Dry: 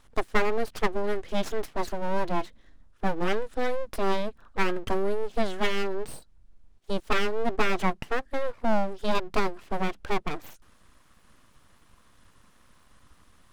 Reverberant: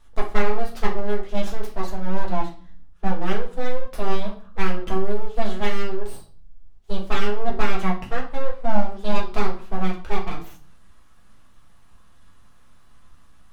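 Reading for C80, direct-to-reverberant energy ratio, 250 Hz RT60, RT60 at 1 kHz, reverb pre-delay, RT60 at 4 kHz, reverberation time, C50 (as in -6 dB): 14.5 dB, -3.5 dB, 0.70 s, 0.45 s, 4 ms, 0.35 s, 0.45 s, 9.5 dB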